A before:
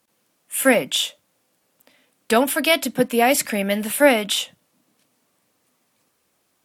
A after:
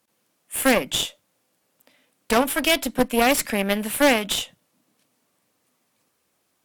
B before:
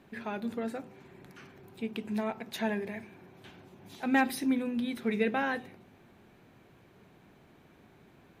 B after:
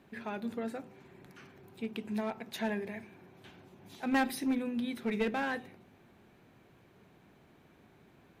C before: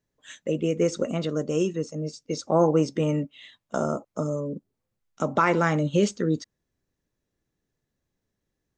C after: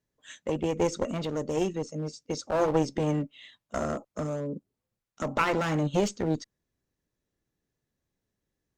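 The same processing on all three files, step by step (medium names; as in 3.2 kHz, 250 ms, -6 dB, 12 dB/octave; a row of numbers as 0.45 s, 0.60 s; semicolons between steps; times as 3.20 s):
one-sided clip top -25.5 dBFS, bottom -4.5 dBFS; Chebyshev shaper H 5 -14 dB, 7 -15 dB, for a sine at -4.5 dBFS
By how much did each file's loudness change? -2.0 LU, -2.5 LU, -4.0 LU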